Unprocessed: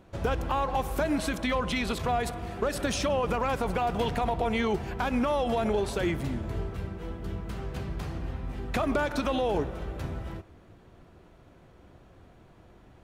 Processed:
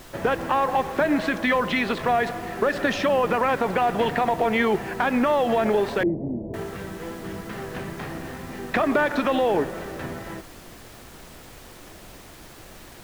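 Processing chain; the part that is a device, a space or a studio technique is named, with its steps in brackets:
horn gramophone (band-pass filter 190–3,200 Hz; parametric band 1,800 Hz +8 dB 0.26 octaves; tape wow and flutter 19 cents; pink noise bed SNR 20 dB)
0:06.03–0:06.54: inverse Chebyshev low-pass filter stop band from 1,300 Hz, stop band 40 dB
level +6.5 dB

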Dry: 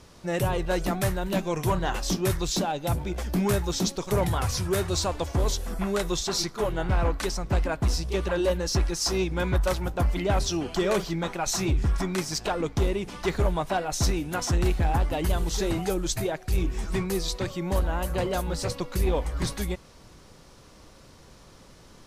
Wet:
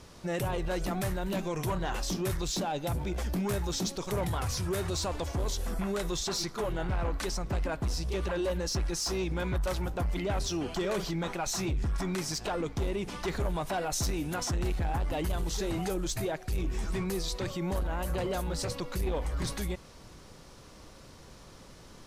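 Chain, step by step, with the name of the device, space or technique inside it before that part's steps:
soft clipper into limiter (soft clipping −18 dBFS, distortion −21 dB; brickwall limiter −25.5 dBFS, peak gain reduction 6 dB)
0:13.40–0:14.33: high-shelf EQ 7,800 Hz +5.5 dB

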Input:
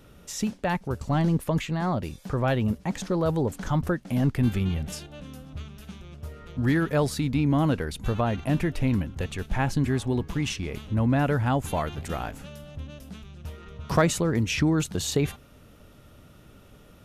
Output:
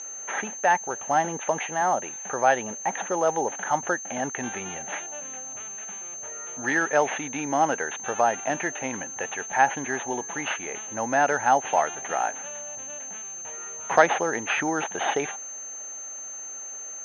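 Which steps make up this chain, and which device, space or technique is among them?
toy sound module (linearly interpolated sample-rate reduction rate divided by 6×; switching amplifier with a slow clock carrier 6,300 Hz; loudspeaker in its box 640–4,900 Hz, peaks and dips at 810 Hz +8 dB, 1,100 Hz −6 dB, 1,700 Hz +5 dB, 3,000 Hz +3 dB, 4,500 Hz −7 dB)
level +7 dB

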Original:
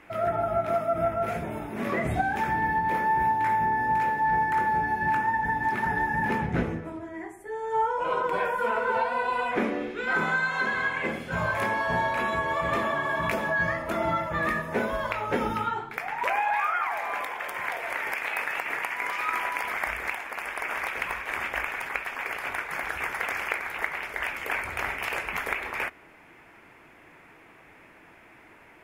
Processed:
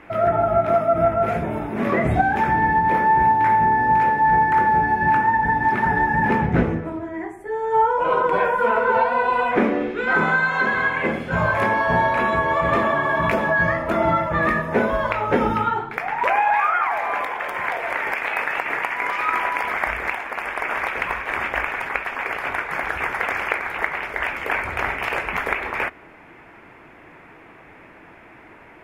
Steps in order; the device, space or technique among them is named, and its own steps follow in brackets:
through cloth (high-shelf EQ 3,700 Hz −12.5 dB)
level +8.5 dB

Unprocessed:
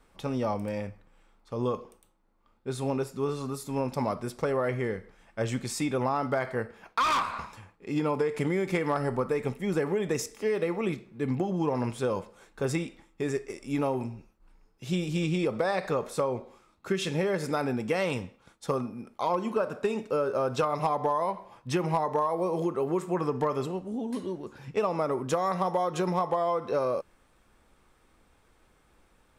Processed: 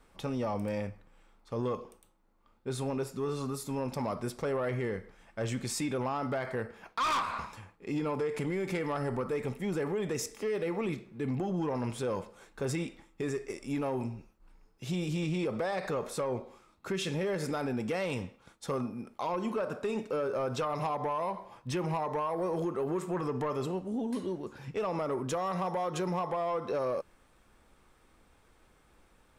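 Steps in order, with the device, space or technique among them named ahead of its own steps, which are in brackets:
soft clipper into limiter (soft clipping −21 dBFS, distortion −19 dB; brickwall limiter −26 dBFS, peak gain reduction 4 dB)

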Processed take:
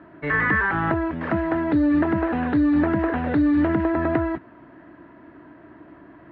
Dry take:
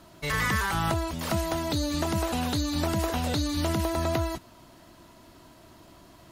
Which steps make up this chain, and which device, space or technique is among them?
bass cabinet (loudspeaker in its box 77–2,100 Hz, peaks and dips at 98 Hz −4 dB, 300 Hz +10 dB, 430 Hz +3 dB, 1,700 Hz +9 dB)
level +3 dB

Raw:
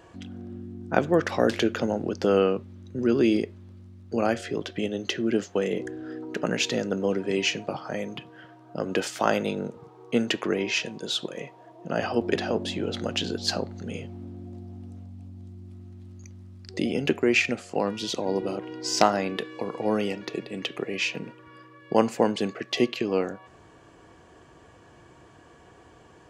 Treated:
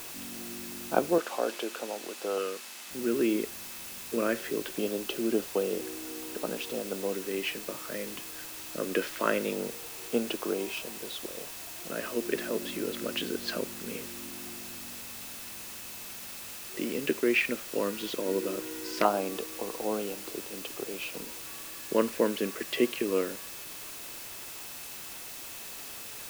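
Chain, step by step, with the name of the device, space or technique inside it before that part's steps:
shortwave radio (band-pass filter 270–2,700 Hz; amplitude tremolo 0.22 Hz, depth 48%; auto-filter notch square 0.21 Hz 780–1,900 Hz; steady tone 2,600 Hz −55 dBFS; white noise bed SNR 9 dB)
0:01.18–0:02.91: meter weighting curve A

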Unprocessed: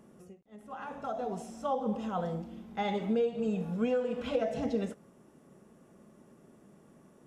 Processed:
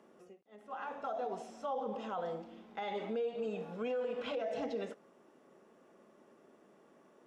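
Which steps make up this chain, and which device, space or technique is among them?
DJ mixer with the lows and highs turned down (three-way crossover with the lows and the highs turned down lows −20 dB, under 290 Hz, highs −13 dB, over 5,600 Hz; brickwall limiter −29.5 dBFS, peak gain reduction 10 dB)

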